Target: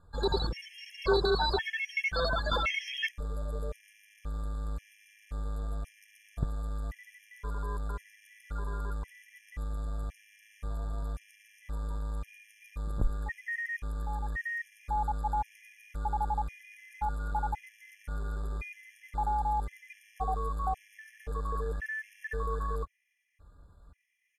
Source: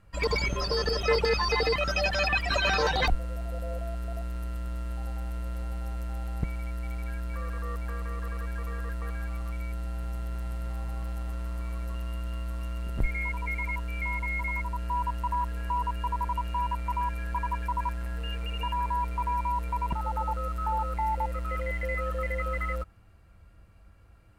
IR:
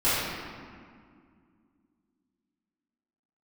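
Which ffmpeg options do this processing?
-af "asetrate=38170,aresample=44100,atempo=1.15535,afftfilt=real='re*gt(sin(2*PI*0.94*pts/sr)*(1-2*mod(floor(b*sr/1024/1700),2)),0)':imag='im*gt(sin(2*PI*0.94*pts/sr)*(1-2*mod(floor(b*sr/1024/1700),2)),0)':win_size=1024:overlap=0.75,volume=-1dB"

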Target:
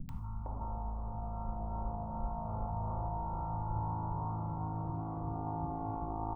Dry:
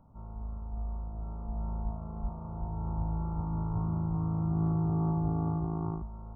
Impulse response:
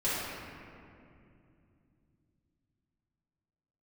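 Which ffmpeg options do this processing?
-filter_complex "[0:a]acompressor=mode=upward:threshold=-35dB:ratio=2.5,equalizer=f=890:w=1.2:g=10,acompressor=threshold=-33dB:ratio=6,acrossover=split=240|1200[a][b][c];[c]adelay=90[d];[b]adelay=460[e];[a][e][d]amix=inputs=3:normalize=0,asplit=2[f][g];[1:a]atrim=start_sample=2205,afade=t=out:st=0.15:d=0.01,atrim=end_sample=7056,lowshelf=f=370:g=8.5[h];[g][h]afir=irnorm=-1:irlink=0,volume=-14.5dB[i];[f][i]amix=inputs=2:normalize=0,volume=1dB"

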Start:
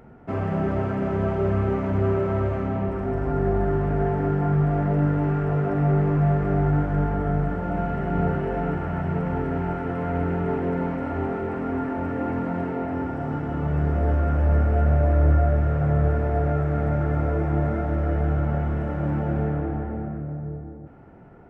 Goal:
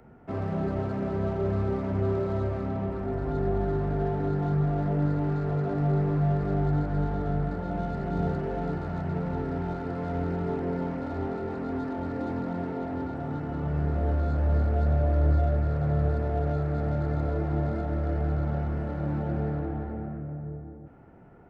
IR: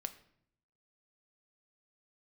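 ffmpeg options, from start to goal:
-filter_complex "[0:a]acrossover=split=200|340|940[a][b][c][d];[d]asoftclip=type=tanh:threshold=-39dB[e];[a][b][c][e]amix=inputs=4:normalize=0,volume=-4.5dB"

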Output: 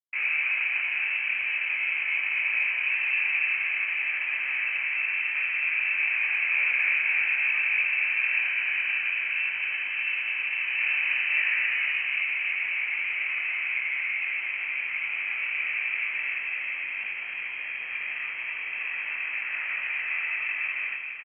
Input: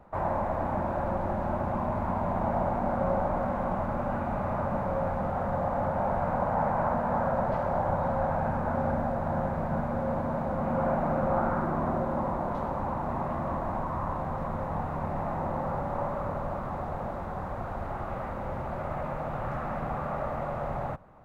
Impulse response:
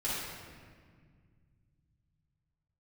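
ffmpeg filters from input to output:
-filter_complex "[0:a]highpass=660,anlmdn=0.631,asplit=2[a][b];[b]asoftclip=type=hard:threshold=-28.5dB,volume=-6dB[c];[a][c]amix=inputs=2:normalize=0,acrusher=bits=8:dc=4:mix=0:aa=0.000001,flanger=delay=19.5:depth=6.4:speed=0.41,asplit=2[d][e];[e]aecho=0:1:166.2|268.2:0.355|0.501[f];[d][f]amix=inputs=2:normalize=0,lowpass=f=2.7k:t=q:w=0.5098,lowpass=f=2.7k:t=q:w=0.6013,lowpass=f=2.7k:t=q:w=0.9,lowpass=f=2.7k:t=q:w=2.563,afreqshift=-3200,volume=4.5dB"

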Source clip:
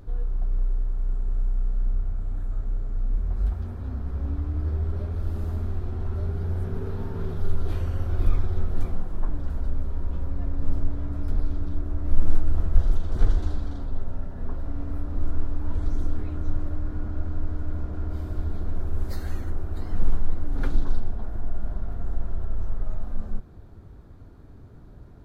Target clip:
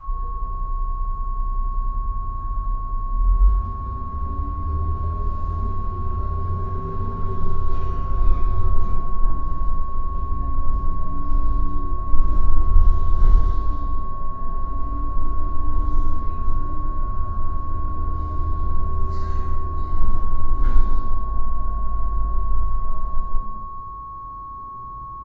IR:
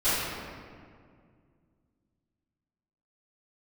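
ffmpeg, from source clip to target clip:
-filter_complex "[0:a]aeval=exprs='val(0)+0.0224*sin(2*PI*1100*n/s)':c=same[a];[1:a]atrim=start_sample=2205,asetrate=88200,aresample=44100[b];[a][b]afir=irnorm=-1:irlink=0,aresample=16000,aresample=44100,volume=-10dB"

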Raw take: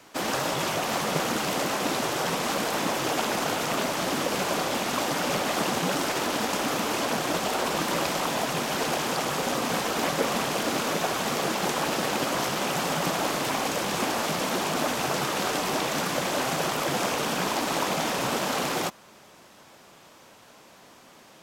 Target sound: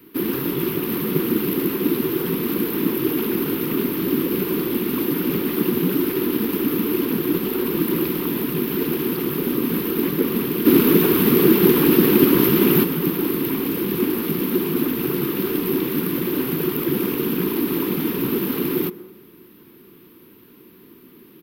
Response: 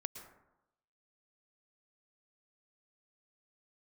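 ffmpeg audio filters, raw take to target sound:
-filter_complex "[0:a]firequalizer=gain_entry='entry(110,0);entry(170,4);entry(370,9);entry(620,-27);entry(970,-11);entry(2700,-7);entry(4100,-11);entry(7000,-25);entry(13000,12)':delay=0.05:min_phase=1,asplit=3[a][b][c];[a]afade=t=out:st=10.65:d=0.02[d];[b]acontrast=85,afade=t=in:st=10.65:d=0.02,afade=t=out:st=12.83:d=0.02[e];[c]afade=t=in:st=12.83:d=0.02[f];[d][e][f]amix=inputs=3:normalize=0,asplit=2[g][h];[h]equalizer=f=520:t=o:w=1:g=8.5[i];[1:a]atrim=start_sample=2205[j];[i][j]afir=irnorm=-1:irlink=0,volume=-9.5dB[k];[g][k]amix=inputs=2:normalize=0,volume=2.5dB"

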